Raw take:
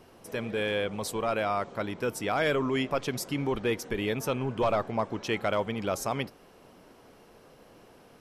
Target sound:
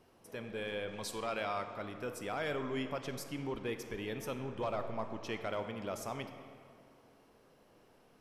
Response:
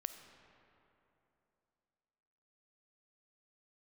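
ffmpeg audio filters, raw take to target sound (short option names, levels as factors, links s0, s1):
-filter_complex "[0:a]asettb=1/sr,asplit=3[s0][s1][s2];[s0]atrim=end=0.884[s3];[s1]atrim=start=0.88:end=1.62,asetpts=PTS-STARTPTS,afade=t=in:d=0.004:c=qsin,afade=t=out:st=0.736:d=0.004:c=qsin,equalizer=f=3600:w=0.47:g=6.5[s4];[s2]atrim=start=1.616[s5];[s3][s4]acrossfade=d=0.004:c1=hsin:c2=qsin[s6];[s6][s5]acrossfade=d=0.004:c1=qsin:c2=hsin[s7];[1:a]atrim=start_sample=2205,asetrate=61740,aresample=44100[s8];[s7][s8]afir=irnorm=-1:irlink=0,volume=0.596"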